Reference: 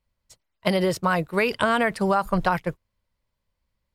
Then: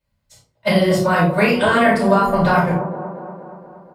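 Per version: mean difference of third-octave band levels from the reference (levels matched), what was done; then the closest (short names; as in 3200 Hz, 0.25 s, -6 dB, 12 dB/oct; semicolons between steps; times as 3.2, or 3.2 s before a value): 7.0 dB: HPF 61 Hz 12 dB/oct; doubler 33 ms -5.5 dB; on a send: band-limited delay 0.236 s, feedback 62%, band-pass 440 Hz, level -7.5 dB; on the sum: shoebox room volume 250 m³, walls furnished, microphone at 7.1 m; gain -6 dB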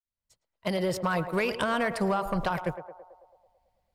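4.0 dB: opening faded in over 1.30 s; compressor, threshold -22 dBFS, peak gain reduction 6.5 dB; soft clip -18.5 dBFS, distortion -18 dB; on a send: narrowing echo 0.11 s, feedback 67%, band-pass 690 Hz, level -9 dB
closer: second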